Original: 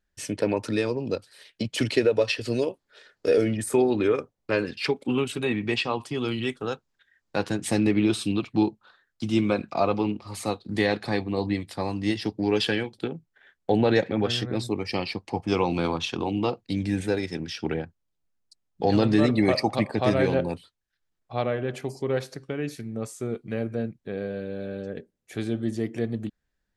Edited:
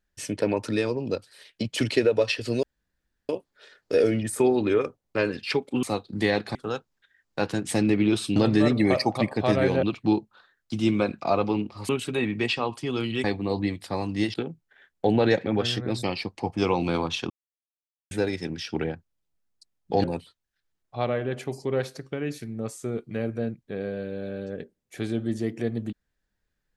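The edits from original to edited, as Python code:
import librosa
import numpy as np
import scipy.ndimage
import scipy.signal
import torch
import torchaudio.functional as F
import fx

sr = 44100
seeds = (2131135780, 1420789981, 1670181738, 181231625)

y = fx.edit(x, sr, fx.insert_room_tone(at_s=2.63, length_s=0.66),
    fx.swap(start_s=5.17, length_s=1.35, other_s=10.39, other_length_s=0.72),
    fx.cut(start_s=12.21, length_s=0.78),
    fx.cut(start_s=14.68, length_s=0.25),
    fx.silence(start_s=16.2, length_s=0.81),
    fx.move(start_s=18.94, length_s=1.47, to_s=8.33), tone=tone)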